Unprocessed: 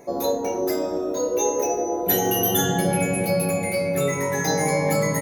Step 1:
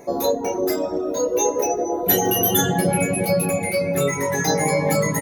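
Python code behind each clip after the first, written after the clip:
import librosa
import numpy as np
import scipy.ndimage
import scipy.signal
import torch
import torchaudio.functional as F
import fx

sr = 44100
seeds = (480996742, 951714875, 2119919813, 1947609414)

y = fx.dereverb_blind(x, sr, rt60_s=0.64)
y = y * librosa.db_to_amplitude(3.5)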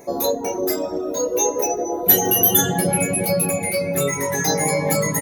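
y = fx.high_shelf(x, sr, hz=5800.0, db=7.5)
y = y * librosa.db_to_amplitude(-1.0)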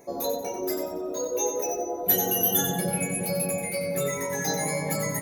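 y = fx.echo_feedback(x, sr, ms=92, feedback_pct=33, wet_db=-7)
y = y * librosa.db_to_amplitude(-8.5)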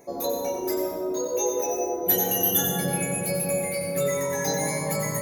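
y = fx.rev_plate(x, sr, seeds[0], rt60_s=0.97, hf_ratio=0.6, predelay_ms=105, drr_db=5.0)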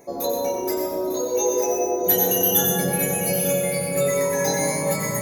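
y = fx.echo_multitap(x, sr, ms=(126, 835, 899), db=(-9.5, -18.0, -9.5))
y = y * librosa.db_to_amplitude(2.5)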